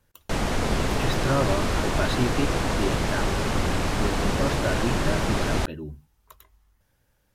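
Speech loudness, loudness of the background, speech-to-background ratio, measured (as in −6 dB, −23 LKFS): −31.0 LKFS, −26.0 LKFS, −5.0 dB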